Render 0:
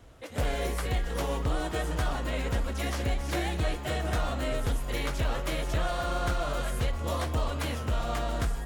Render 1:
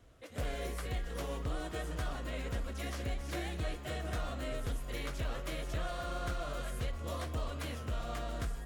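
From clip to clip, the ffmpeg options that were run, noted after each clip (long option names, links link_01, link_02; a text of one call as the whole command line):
ffmpeg -i in.wav -af "equalizer=frequency=870:width_type=o:width=0.21:gain=-7.5,volume=-8dB" out.wav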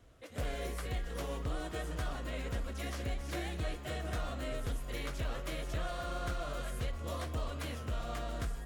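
ffmpeg -i in.wav -af anull out.wav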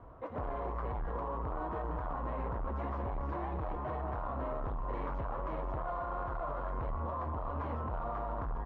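ffmpeg -i in.wav -af "aresample=16000,asoftclip=type=tanh:threshold=-40dB,aresample=44100,lowpass=frequency=1000:width_type=q:width=4.9,alimiter=level_in=13dB:limit=-24dB:level=0:latency=1:release=45,volume=-13dB,volume=7.5dB" out.wav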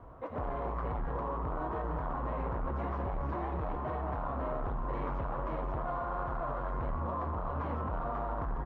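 ffmpeg -i in.wav -filter_complex "[0:a]asplit=8[link_01][link_02][link_03][link_04][link_05][link_06][link_07][link_08];[link_02]adelay=86,afreqshift=100,volume=-13.5dB[link_09];[link_03]adelay=172,afreqshift=200,volume=-17.5dB[link_10];[link_04]adelay=258,afreqshift=300,volume=-21.5dB[link_11];[link_05]adelay=344,afreqshift=400,volume=-25.5dB[link_12];[link_06]adelay=430,afreqshift=500,volume=-29.6dB[link_13];[link_07]adelay=516,afreqshift=600,volume=-33.6dB[link_14];[link_08]adelay=602,afreqshift=700,volume=-37.6dB[link_15];[link_01][link_09][link_10][link_11][link_12][link_13][link_14][link_15]amix=inputs=8:normalize=0,volume=1.5dB" out.wav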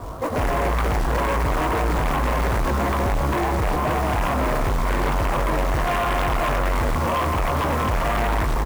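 ffmpeg -i in.wav -filter_complex "[0:a]acrusher=bits=4:mode=log:mix=0:aa=0.000001,asplit=2[link_01][link_02];[link_02]adelay=20,volume=-8dB[link_03];[link_01][link_03]amix=inputs=2:normalize=0,aeval=exprs='0.0668*sin(PI/2*2.51*val(0)/0.0668)':channel_layout=same,volume=5.5dB" out.wav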